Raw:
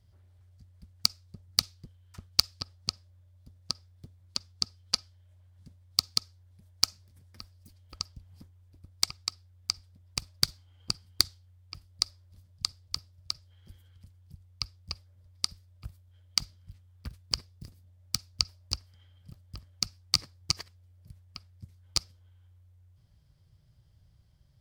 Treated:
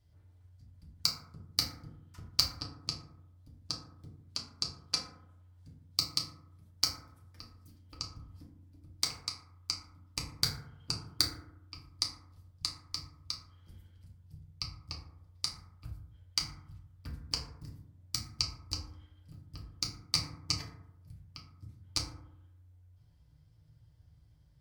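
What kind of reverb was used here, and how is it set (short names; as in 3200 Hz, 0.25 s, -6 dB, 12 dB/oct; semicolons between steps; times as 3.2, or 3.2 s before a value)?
FDN reverb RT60 0.81 s, low-frequency decay 1.25×, high-frequency decay 0.35×, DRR -2.5 dB; gain -6 dB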